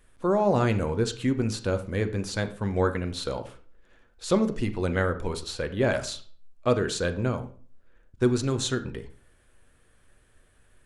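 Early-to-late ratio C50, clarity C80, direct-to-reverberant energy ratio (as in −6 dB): 13.5 dB, 17.5 dB, 8.0 dB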